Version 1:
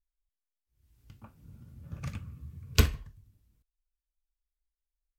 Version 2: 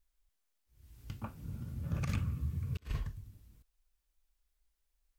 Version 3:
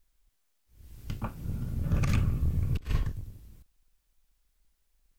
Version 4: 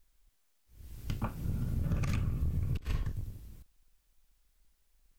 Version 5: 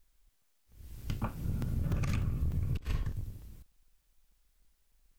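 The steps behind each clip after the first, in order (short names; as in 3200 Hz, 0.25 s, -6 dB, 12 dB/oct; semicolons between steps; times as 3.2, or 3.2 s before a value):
negative-ratio compressor -38 dBFS, ratio -0.5; gain +2.5 dB
octaver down 2 oct, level -3 dB; gain +7 dB
compressor 5:1, threshold -30 dBFS, peak gain reduction 9 dB; gain +1.5 dB
crackling interface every 0.30 s, samples 128, zero, from 0.42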